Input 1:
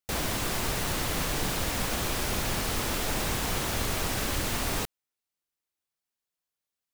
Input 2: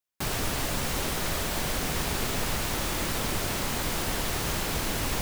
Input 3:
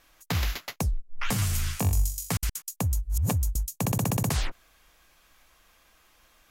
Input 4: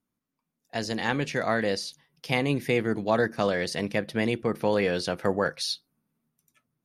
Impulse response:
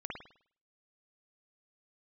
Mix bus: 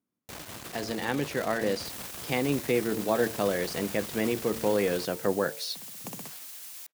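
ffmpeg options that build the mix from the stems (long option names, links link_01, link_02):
-filter_complex "[0:a]acrusher=bits=4:dc=4:mix=0:aa=0.000001,adelay=200,volume=-7.5dB[link_01];[1:a]aderivative,alimiter=level_in=1dB:limit=-24dB:level=0:latency=1:release=23,volume=-1dB,adelay=1650,volume=-8.5dB[link_02];[2:a]highpass=frequency=170:width=0.5412,highpass=frequency=170:width=1.3066,aeval=exprs='val(0)*pow(10,-21*if(lt(mod(2.2*n/s,1),2*abs(2.2)/1000),1-mod(2.2*n/s,1)/(2*abs(2.2)/1000),(mod(2.2*n/s,1)-2*abs(2.2)/1000)/(1-2*abs(2.2)/1000))/20)':channel_layout=same,adelay=1950,volume=-1dB[link_03];[3:a]equalizer=frequency=360:width_type=o:width=1.6:gain=5.5,bandreject=frequency=113.1:width_type=h:width=4,bandreject=frequency=226.2:width_type=h:width=4,bandreject=frequency=339.3:width_type=h:width=4,bandreject=frequency=452.4:width_type=h:width=4,bandreject=frequency=565.5:width_type=h:width=4,bandreject=frequency=678.6:width_type=h:width=4,bandreject=frequency=791.7:width_type=h:width=4,bandreject=frequency=904.8:width_type=h:width=4,volume=-5dB,asplit=2[link_04][link_05];[link_05]apad=whole_len=372795[link_06];[link_03][link_06]sidechaincompress=threshold=-38dB:ratio=8:attack=16:release=907[link_07];[link_01][link_02][link_07][link_04]amix=inputs=4:normalize=0,highpass=85"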